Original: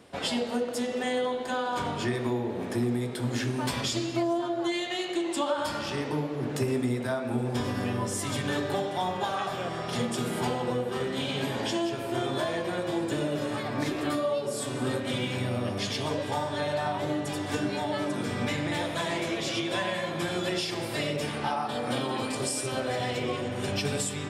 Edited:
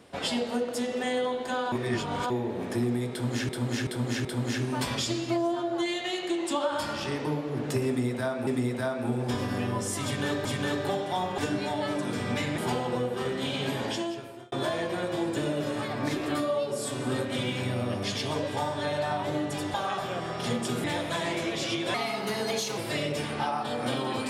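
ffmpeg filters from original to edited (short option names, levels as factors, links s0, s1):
-filter_complex "[0:a]asplit=15[s0][s1][s2][s3][s4][s5][s6][s7][s8][s9][s10][s11][s12][s13][s14];[s0]atrim=end=1.722[s15];[s1]atrim=start=1.718:end=2.302,asetpts=PTS-STARTPTS,areverse[s16];[s2]atrim=start=2.298:end=3.492[s17];[s3]atrim=start=3.108:end=3.492[s18];[s4]atrim=start=3.108:end=3.492[s19];[s5]atrim=start=3.108:end=7.332[s20];[s6]atrim=start=6.728:end=8.712[s21];[s7]atrim=start=8.298:end=9.232[s22];[s8]atrim=start=17.488:end=18.692[s23];[s9]atrim=start=10.328:end=12.27,asetpts=PTS-STARTPTS,afade=t=out:st=1.252:d=0.69[s24];[s10]atrim=start=12.27:end=17.492,asetpts=PTS-STARTPTS,afade=t=in:d=0.004:c=hsin[s25];[s11]atrim=start=9.228:end=10.332[s26];[s12]atrim=start=18.688:end=19.794[s27];[s13]atrim=start=19.79:end=20.82,asetpts=PTS-STARTPTS,asetrate=54243,aresample=44100,atrim=end_sample=36929,asetpts=PTS-STARTPTS[s28];[s14]atrim=start=20.816[s29];[s15][s16]acrossfade=d=0.004:c1=hsin:c2=hsin[s30];[s30][s17]acrossfade=d=0.004:c1=hsin:c2=hsin[s31];[s31][s18]acrossfade=d=0.004:c1=hsin:c2=hsin[s32];[s32][s19]acrossfade=d=0.004:c1=hsin:c2=hsin[s33];[s33][s20]acrossfade=d=0.004:c1=hsin:c2=hsin[s34];[s34][s21]acrossfade=d=0.004:c1=hsin:c2=hsin[s35];[s35][s22]acrossfade=d=0.004:c1=hsin:c2=hsin[s36];[s36][s23]acrossfade=d=0.004:c1=hsin:c2=hsin[s37];[s24][s25]concat=n=2:v=0:a=1[s38];[s37][s38]acrossfade=d=0.004:c1=hsin:c2=hsin[s39];[s39][s26]acrossfade=d=0.004:c1=hsin:c2=hsin[s40];[s40][s27]acrossfade=d=0.004:c1=hsin:c2=hsin[s41];[s41][s28]acrossfade=d=0.004:c1=hsin:c2=hsin[s42];[s42][s29]acrossfade=d=0.004:c1=hsin:c2=hsin"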